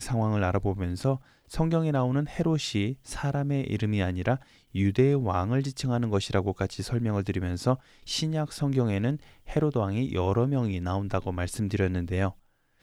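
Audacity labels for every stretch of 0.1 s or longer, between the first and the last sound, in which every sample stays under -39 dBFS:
1.170000	1.510000	silence
2.940000	3.070000	silence
4.370000	4.750000	silence
7.760000	8.070000	silence
9.220000	9.480000	silence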